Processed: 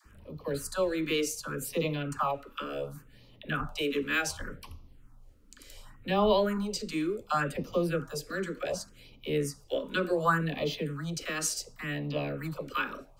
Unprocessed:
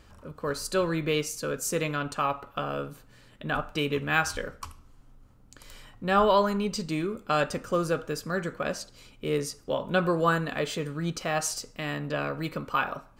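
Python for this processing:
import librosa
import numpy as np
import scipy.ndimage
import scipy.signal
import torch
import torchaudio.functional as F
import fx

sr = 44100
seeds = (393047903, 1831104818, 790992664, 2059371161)

y = fx.dispersion(x, sr, late='lows', ms=57.0, hz=500.0)
y = fx.phaser_stages(y, sr, stages=4, low_hz=120.0, high_hz=1600.0, hz=0.68, feedback_pct=0)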